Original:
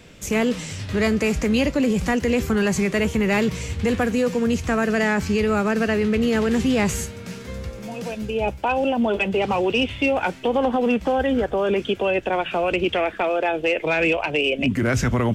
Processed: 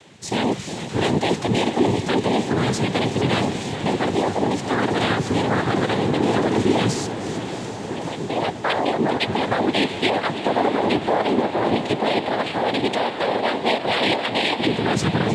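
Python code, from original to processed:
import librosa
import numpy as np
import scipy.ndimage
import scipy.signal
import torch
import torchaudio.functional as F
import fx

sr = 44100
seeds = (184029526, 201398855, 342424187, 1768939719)

y = fx.reverse_delay(x, sr, ms=297, wet_db=-12)
y = fx.noise_vocoder(y, sr, seeds[0], bands=6)
y = fx.echo_diffused(y, sr, ms=698, feedback_pct=64, wet_db=-11.0)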